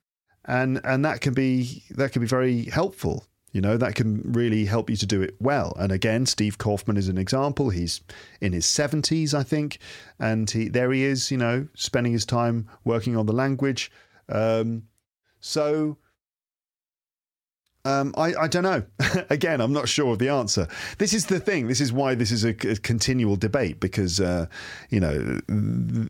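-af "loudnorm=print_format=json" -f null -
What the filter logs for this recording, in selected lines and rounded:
"input_i" : "-24.4",
"input_tp" : "-7.6",
"input_lra" : "2.7",
"input_thresh" : "-34.6",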